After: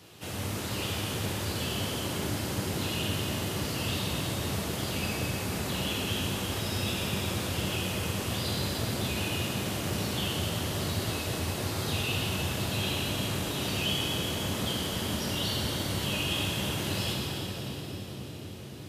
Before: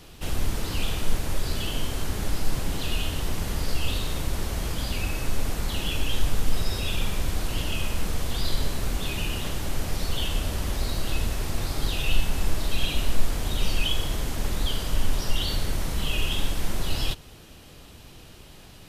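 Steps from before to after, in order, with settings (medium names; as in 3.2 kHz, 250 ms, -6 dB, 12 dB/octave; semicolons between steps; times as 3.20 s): high-pass 92 Hz 24 dB/octave; on a send: bucket-brigade echo 510 ms, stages 2048, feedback 70%, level -6 dB; on the sum: plate-style reverb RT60 4.2 s, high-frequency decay 0.95×, DRR -3 dB; trim -4.5 dB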